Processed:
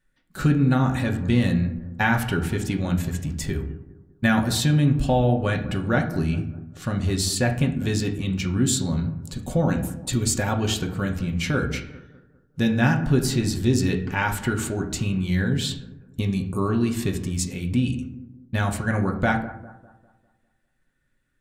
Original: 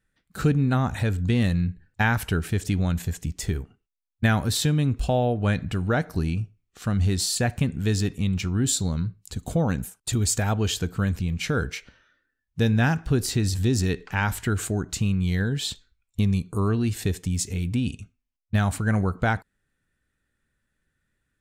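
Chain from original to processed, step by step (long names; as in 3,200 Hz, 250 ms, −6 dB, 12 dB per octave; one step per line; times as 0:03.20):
bucket-brigade delay 200 ms, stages 2,048, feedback 43%, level −16.5 dB
convolution reverb RT60 0.55 s, pre-delay 3 ms, DRR 1.5 dB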